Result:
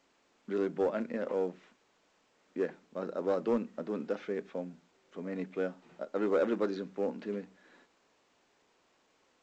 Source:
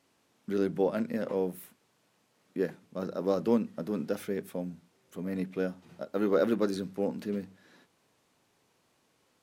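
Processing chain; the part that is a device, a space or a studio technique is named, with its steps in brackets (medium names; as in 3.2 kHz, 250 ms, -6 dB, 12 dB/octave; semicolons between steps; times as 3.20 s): telephone (band-pass 270–3000 Hz; saturation -20 dBFS, distortion -19 dB; A-law 128 kbps 16 kHz)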